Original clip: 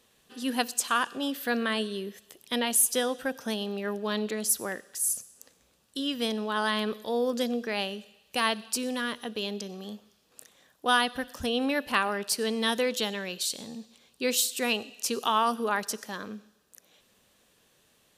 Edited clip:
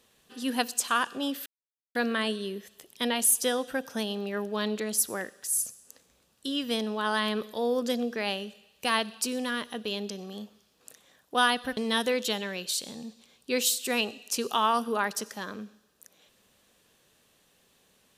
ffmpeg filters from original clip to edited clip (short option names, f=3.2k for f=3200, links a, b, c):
-filter_complex "[0:a]asplit=3[a][b][c];[a]atrim=end=1.46,asetpts=PTS-STARTPTS,afade=t=out:st=1.456:d=0.004:c=hsin,apad=pad_dur=0.49[d];[b]atrim=start=1.46:end=11.282,asetpts=PTS-STARTPTS,afade=t=in:d=0.004:c=hsin[e];[c]atrim=start=12.488[f];[d][e]concat=n=2:v=0:a=1[g];[g][f]acrossfade=d=0.004:c1=hsin:c2=hsin"